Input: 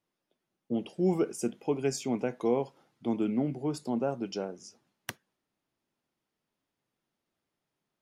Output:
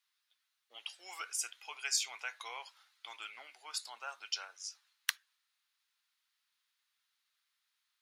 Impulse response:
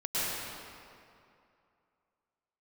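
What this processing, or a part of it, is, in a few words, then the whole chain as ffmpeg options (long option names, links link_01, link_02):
headphones lying on a table: -af "highpass=frequency=1300:width=0.5412,highpass=frequency=1300:width=1.3066,equalizer=frequency=4000:width_type=o:width=0.43:gain=7,volume=5dB"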